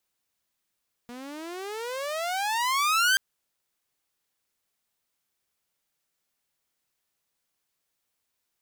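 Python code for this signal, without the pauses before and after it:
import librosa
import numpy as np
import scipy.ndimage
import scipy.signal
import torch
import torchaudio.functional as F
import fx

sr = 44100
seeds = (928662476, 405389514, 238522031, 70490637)

y = fx.riser_tone(sr, length_s=2.08, level_db=-16.0, wave='saw', hz=237.0, rise_st=33.0, swell_db=20.5)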